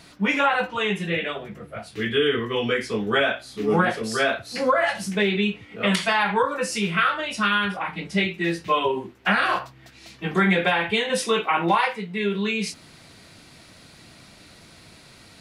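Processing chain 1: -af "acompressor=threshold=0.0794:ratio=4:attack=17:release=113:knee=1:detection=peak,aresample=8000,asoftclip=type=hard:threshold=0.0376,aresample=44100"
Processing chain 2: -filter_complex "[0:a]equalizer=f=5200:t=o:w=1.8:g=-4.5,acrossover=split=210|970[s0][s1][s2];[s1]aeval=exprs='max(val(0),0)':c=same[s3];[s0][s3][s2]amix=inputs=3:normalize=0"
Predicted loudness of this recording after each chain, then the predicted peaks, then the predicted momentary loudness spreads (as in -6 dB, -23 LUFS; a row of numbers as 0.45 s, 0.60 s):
-31.0 LUFS, -25.5 LUFS; -23.0 dBFS, -8.0 dBFS; 20 LU, 8 LU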